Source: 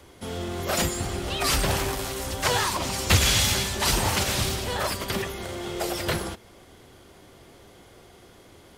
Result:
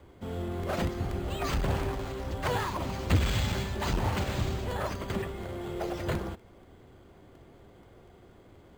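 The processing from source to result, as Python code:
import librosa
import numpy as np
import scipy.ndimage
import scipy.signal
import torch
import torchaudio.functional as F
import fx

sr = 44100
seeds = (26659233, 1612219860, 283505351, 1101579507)

y = fx.low_shelf(x, sr, hz=260.0, db=4.5)
y = np.repeat(scipy.signal.resample_poly(y, 1, 4), 4)[:len(y)]
y = fx.high_shelf(y, sr, hz=2600.0, db=-10.5)
y = fx.buffer_crackle(y, sr, first_s=0.63, period_s=0.24, block=128, kind='repeat')
y = fx.transformer_sat(y, sr, knee_hz=190.0)
y = y * 10.0 ** (-4.5 / 20.0)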